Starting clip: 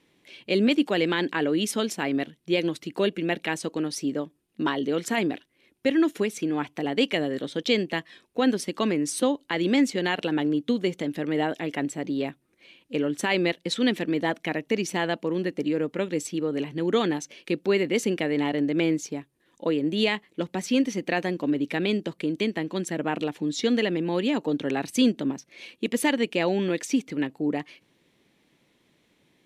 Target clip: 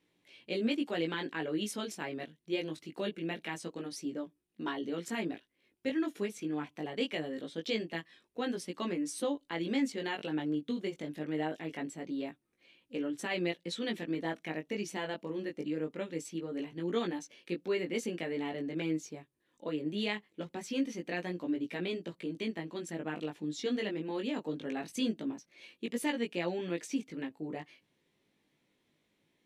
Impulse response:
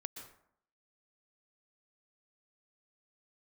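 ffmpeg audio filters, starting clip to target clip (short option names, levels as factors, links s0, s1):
-af "flanger=delay=17:depth=2.7:speed=0.23,volume=0.422"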